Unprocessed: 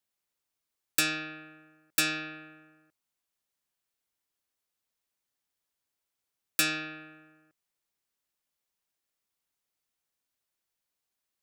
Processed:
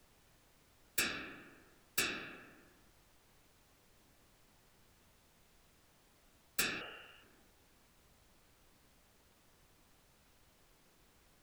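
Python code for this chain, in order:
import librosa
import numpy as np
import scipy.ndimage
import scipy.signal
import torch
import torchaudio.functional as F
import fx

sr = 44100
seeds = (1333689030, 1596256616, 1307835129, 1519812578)

y = fx.freq_invert(x, sr, carrier_hz=3100, at=(6.81, 7.23))
y = fx.whisperise(y, sr, seeds[0])
y = fx.dmg_noise_colour(y, sr, seeds[1], colour='pink', level_db=-59.0)
y = y * librosa.db_to_amplitude(-8.5)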